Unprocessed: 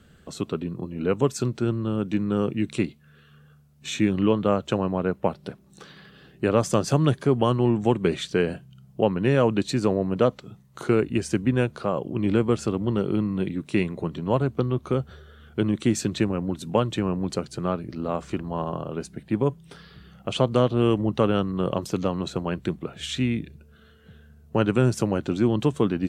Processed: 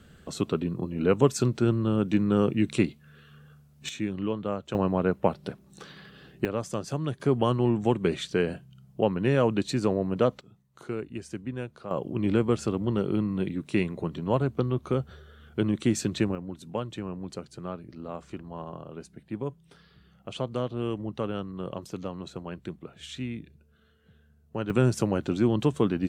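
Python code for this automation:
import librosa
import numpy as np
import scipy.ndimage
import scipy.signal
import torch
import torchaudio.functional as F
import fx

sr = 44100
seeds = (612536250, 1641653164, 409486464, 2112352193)

y = fx.gain(x, sr, db=fx.steps((0.0, 1.0), (3.89, -9.0), (4.75, 0.0), (6.45, -10.0), (7.2, -3.0), (10.41, -12.5), (11.91, -2.5), (16.35, -10.0), (24.7, -2.0)))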